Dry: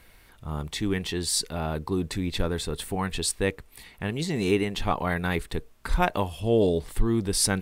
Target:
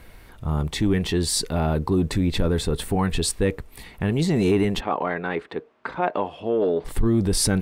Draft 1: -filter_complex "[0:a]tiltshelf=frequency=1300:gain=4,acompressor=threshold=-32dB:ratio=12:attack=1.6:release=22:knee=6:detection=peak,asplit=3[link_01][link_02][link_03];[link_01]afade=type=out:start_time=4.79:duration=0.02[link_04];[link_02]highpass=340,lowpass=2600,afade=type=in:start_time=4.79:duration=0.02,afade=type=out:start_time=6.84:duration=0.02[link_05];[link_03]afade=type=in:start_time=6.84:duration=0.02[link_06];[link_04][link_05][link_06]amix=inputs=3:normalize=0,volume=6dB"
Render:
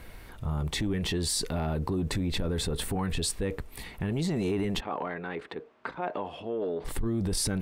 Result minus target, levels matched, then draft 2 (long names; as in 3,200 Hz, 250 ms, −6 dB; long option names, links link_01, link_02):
downward compressor: peak gain reduction +10 dB
-filter_complex "[0:a]tiltshelf=frequency=1300:gain=4,acompressor=threshold=-21dB:ratio=12:attack=1.6:release=22:knee=6:detection=peak,asplit=3[link_01][link_02][link_03];[link_01]afade=type=out:start_time=4.79:duration=0.02[link_04];[link_02]highpass=340,lowpass=2600,afade=type=in:start_time=4.79:duration=0.02,afade=type=out:start_time=6.84:duration=0.02[link_05];[link_03]afade=type=in:start_time=6.84:duration=0.02[link_06];[link_04][link_05][link_06]amix=inputs=3:normalize=0,volume=6dB"